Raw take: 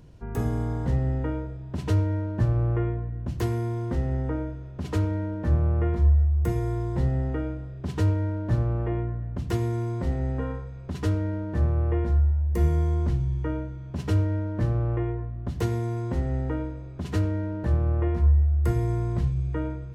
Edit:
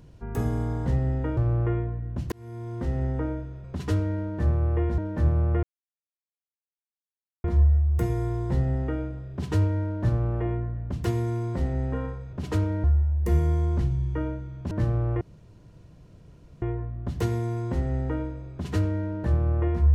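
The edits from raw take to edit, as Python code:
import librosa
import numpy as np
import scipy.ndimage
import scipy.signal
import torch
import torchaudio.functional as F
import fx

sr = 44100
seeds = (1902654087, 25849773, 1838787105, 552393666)

y = fx.edit(x, sr, fx.cut(start_s=1.37, length_s=1.1),
    fx.fade_in_span(start_s=3.42, length_s=0.67),
    fx.swap(start_s=4.74, length_s=0.51, other_s=10.79, other_length_s=1.34),
    fx.insert_silence(at_s=5.9, length_s=1.81),
    fx.cut(start_s=14.0, length_s=0.52),
    fx.insert_room_tone(at_s=15.02, length_s=1.41), tone=tone)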